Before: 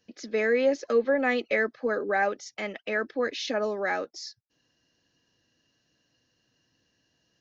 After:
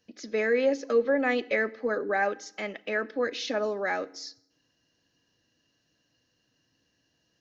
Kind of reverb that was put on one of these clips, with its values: FDN reverb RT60 0.72 s, low-frequency decay 1.35×, high-frequency decay 0.85×, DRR 16.5 dB; trim -1 dB

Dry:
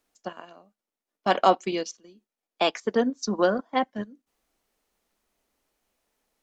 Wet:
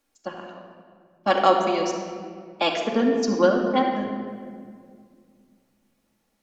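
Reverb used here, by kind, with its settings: simulated room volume 4000 m³, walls mixed, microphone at 2.3 m

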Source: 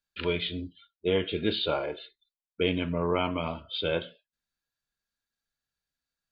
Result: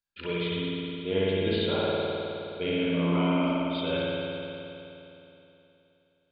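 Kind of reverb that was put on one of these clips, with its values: spring tank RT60 3.1 s, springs 52 ms, chirp 65 ms, DRR -7 dB; trim -6.5 dB

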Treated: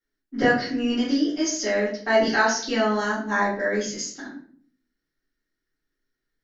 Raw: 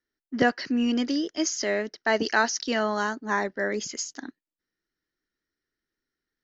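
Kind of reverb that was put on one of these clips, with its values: simulated room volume 54 m³, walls mixed, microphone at 2.2 m; trim -8 dB

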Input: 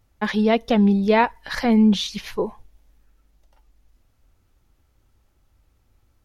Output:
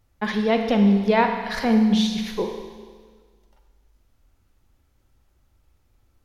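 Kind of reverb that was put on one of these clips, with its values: Schroeder reverb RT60 1.6 s, combs from 32 ms, DRR 5 dB; trim -2 dB

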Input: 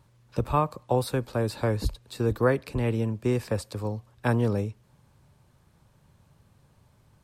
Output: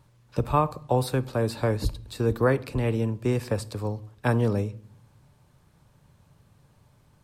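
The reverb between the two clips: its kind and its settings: simulated room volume 880 m³, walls furnished, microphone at 0.39 m; trim +1 dB

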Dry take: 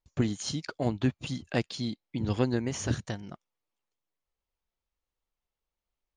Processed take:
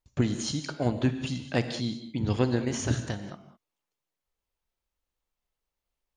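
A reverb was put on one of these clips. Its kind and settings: gated-style reverb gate 230 ms flat, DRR 8 dB; trim +1.5 dB

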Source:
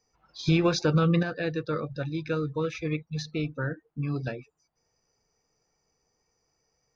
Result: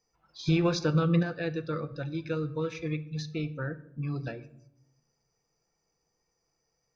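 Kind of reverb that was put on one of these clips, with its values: simulated room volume 2100 m³, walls furnished, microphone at 0.75 m; trim -4 dB

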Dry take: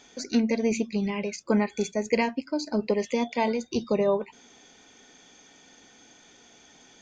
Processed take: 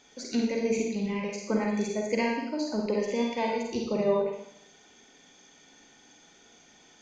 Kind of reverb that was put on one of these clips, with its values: Schroeder reverb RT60 0.76 s, DRR -0.5 dB; trim -5.5 dB

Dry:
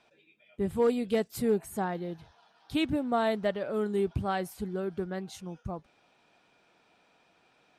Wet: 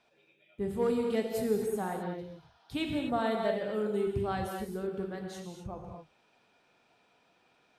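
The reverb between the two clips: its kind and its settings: gated-style reverb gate 280 ms flat, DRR 1.5 dB; trim -4.5 dB

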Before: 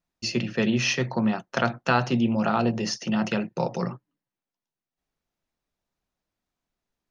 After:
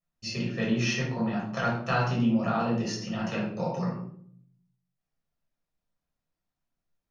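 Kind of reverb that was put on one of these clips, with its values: simulated room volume 830 m³, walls furnished, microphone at 6.1 m; trim -12 dB

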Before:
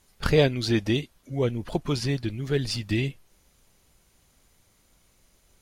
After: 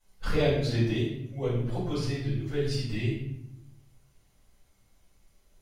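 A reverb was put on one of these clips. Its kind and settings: simulated room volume 220 m³, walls mixed, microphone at 5.3 m; trim -19 dB

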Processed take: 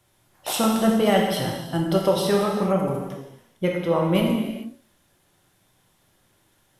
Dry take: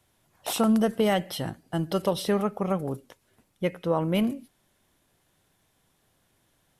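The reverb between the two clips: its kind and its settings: gated-style reverb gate 470 ms falling, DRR -1 dB; trim +2 dB

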